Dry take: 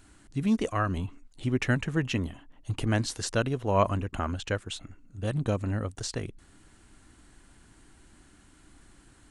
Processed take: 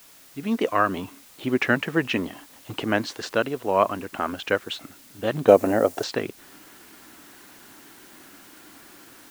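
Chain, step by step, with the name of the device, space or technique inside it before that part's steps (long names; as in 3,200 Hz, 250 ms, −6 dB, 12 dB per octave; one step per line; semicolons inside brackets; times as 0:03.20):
dictaphone (band-pass filter 290–3,400 Hz; automatic gain control gain up to 15 dB; tape wow and flutter; white noise bed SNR 23 dB)
0:05.48–0:06.04: drawn EQ curve 170 Hz 0 dB, 700 Hz +11 dB, 1,000 Hz +1 dB, 3,600 Hz −1 dB, 6,900 Hz +7 dB
level −3.5 dB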